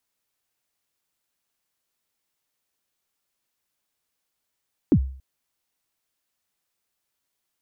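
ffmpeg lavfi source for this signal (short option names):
-f lavfi -i "aevalsrc='0.316*pow(10,-3*t/0.49)*sin(2*PI*(360*0.07/log(66/360)*(exp(log(66/360)*min(t,0.07)/0.07)-1)+66*max(t-0.07,0)))':d=0.28:s=44100"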